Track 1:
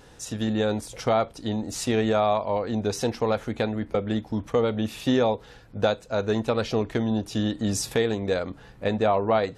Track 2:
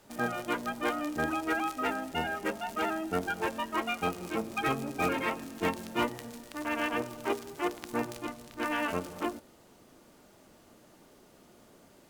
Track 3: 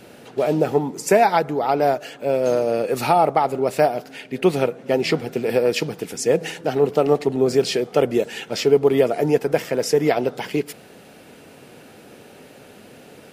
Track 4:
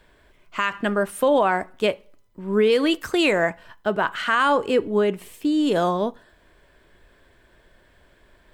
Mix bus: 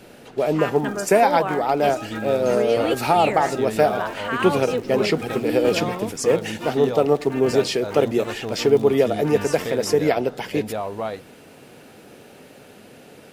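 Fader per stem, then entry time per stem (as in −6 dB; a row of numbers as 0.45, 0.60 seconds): −6.0, −3.5, −1.0, −6.5 decibels; 1.70, 0.65, 0.00, 0.00 seconds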